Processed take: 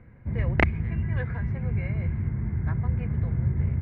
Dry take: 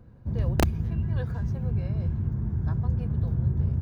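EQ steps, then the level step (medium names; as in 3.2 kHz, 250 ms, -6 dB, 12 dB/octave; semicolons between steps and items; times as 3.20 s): resonant low-pass 2.1 kHz, resonance Q 10; 0.0 dB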